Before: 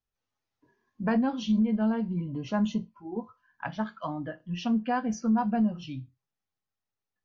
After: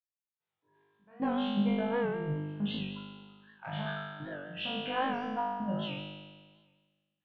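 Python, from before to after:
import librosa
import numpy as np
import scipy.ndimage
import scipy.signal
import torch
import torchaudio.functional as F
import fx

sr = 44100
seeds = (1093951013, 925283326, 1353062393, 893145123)

y = scipy.signal.sosfilt(scipy.signal.cheby1(5, 1.0, [100.0, 3700.0], 'bandpass', fs=sr, output='sos'), x)
y = fx.peak_eq(y, sr, hz=270.0, db=-14.0, octaves=0.33)
y = fx.transient(y, sr, attack_db=-6, sustain_db=10)
y = fx.step_gate(y, sr, bpm=75, pattern='..xxx.xxxxxx.xx', floor_db=-24.0, edge_ms=4.5)
y = fx.room_flutter(y, sr, wall_m=3.4, rt60_s=1.5)
y = fx.record_warp(y, sr, rpm=78.0, depth_cents=100.0)
y = F.gain(torch.from_numpy(y), -7.0).numpy()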